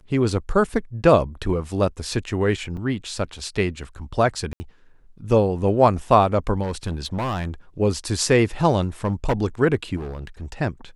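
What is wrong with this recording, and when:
2.77 gap 4.6 ms
4.53–4.6 gap 70 ms
6.62–7.54 clipped -21.5 dBFS
9.04–9.33 clipped -15.5 dBFS
9.96–10.54 clipped -28 dBFS

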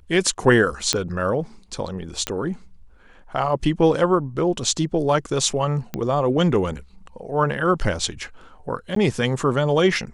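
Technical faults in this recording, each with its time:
0.93 pop -4 dBFS
2.27 pop -8 dBFS
5.94 pop -13 dBFS
8.95–8.96 gap 13 ms

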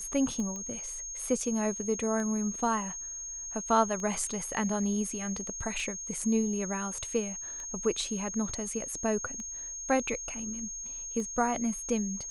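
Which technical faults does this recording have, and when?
tick 33 1/3 rpm -27 dBFS
tone 6500 Hz -37 dBFS
0.56 pop -27 dBFS

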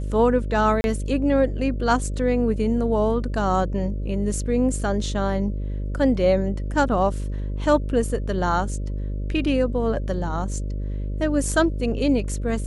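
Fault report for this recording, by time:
buzz 50 Hz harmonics 12 -27 dBFS
0.81–0.84 gap 31 ms

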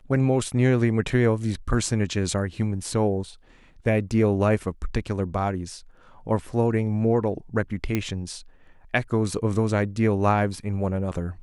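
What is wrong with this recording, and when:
7.95 pop -11 dBFS

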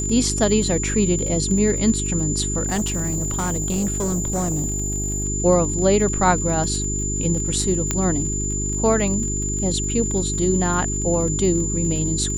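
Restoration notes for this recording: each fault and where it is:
crackle 37/s -28 dBFS
hum 50 Hz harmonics 8 -26 dBFS
tone 7100 Hz -25 dBFS
2.66–5.24 clipped -18.5 dBFS
7.91 pop -6 dBFS

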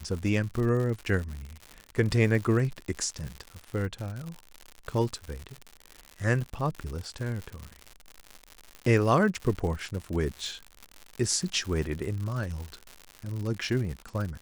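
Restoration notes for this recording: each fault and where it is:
crackle 120/s -33 dBFS

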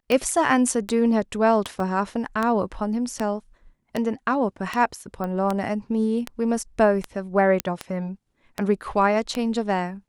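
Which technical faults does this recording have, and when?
tick 78 rpm -11 dBFS
1.8 gap 2.3 ms
5.24 pop -18 dBFS
7.6 pop -6 dBFS

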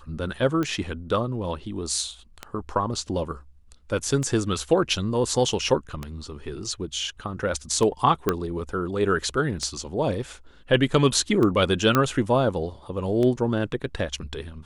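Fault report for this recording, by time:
tick 33 1/3 rpm -15 dBFS
8.29 pop -8 dBFS
11.95 pop -6 dBFS

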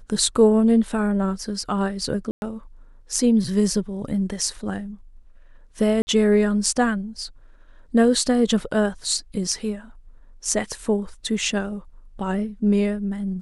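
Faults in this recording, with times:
2.31–2.42 gap 0.111 s
6.02–6.07 gap 50 ms

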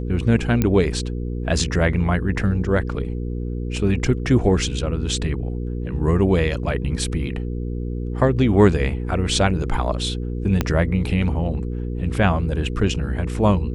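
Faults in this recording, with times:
hum 60 Hz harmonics 8 -26 dBFS
0.62 pop -7 dBFS
10.61 pop -5 dBFS

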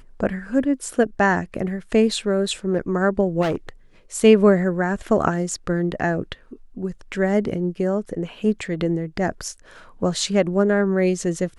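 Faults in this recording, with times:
3.41–3.69 clipped -18.5 dBFS

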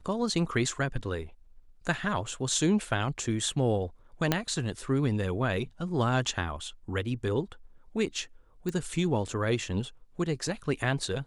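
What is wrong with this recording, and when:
4.32 pop -9 dBFS
8.69 pop

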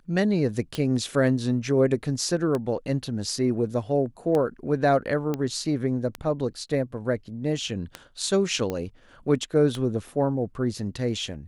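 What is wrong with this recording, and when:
tick 33 1/3 rpm -15 dBFS
5.34 pop -15 dBFS
8.7 pop -16 dBFS

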